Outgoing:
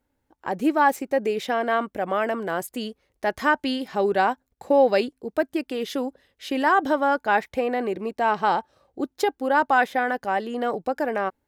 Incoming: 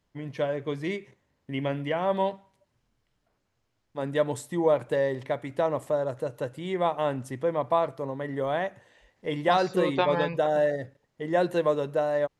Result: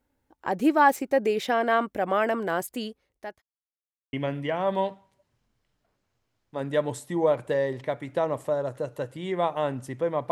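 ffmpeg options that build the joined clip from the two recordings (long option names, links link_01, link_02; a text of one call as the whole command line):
ffmpeg -i cue0.wav -i cue1.wav -filter_complex "[0:a]apad=whole_dur=10.31,atrim=end=10.31,asplit=2[link_01][link_02];[link_01]atrim=end=3.42,asetpts=PTS-STARTPTS,afade=type=out:start_time=2.35:duration=1.07:curve=qsin[link_03];[link_02]atrim=start=3.42:end=4.13,asetpts=PTS-STARTPTS,volume=0[link_04];[1:a]atrim=start=1.55:end=7.73,asetpts=PTS-STARTPTS,afade=type=in:duration=0.004:curve=hsin[link_05];[link_03][link_04][link_05]concat=n=3:v=0:a=1" out.wav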